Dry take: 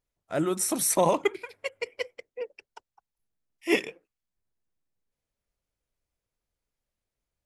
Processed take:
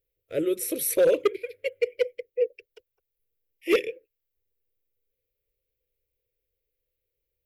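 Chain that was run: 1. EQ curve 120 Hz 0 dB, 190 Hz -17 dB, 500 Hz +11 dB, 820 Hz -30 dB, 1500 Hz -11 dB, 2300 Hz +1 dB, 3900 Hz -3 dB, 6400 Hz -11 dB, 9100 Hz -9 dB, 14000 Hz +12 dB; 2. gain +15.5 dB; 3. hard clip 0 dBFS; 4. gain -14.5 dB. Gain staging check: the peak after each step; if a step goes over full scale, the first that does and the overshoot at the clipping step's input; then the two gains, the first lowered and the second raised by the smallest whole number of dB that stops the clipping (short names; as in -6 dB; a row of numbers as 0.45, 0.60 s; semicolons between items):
-7.5, +8.0, 0.0, -14.5 dBFS; step 2, 8.0 dB; step 2 +7.5 dB, step 4 -6.5 dB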